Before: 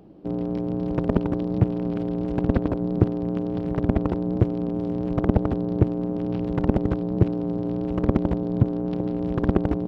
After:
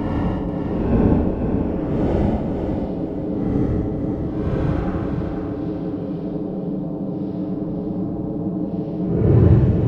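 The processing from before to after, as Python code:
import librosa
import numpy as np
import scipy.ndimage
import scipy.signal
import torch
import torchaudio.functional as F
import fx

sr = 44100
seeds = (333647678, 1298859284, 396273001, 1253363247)

p1 = fx.paulstretch(x, sr, seeds[0], factor=16.0, window_s=0.05, from_s=6.63)
y = p1 + fx.echo_feedback(p1, sr, ms=488, feedback_pct=41, wet_db=-6.0, dry=0)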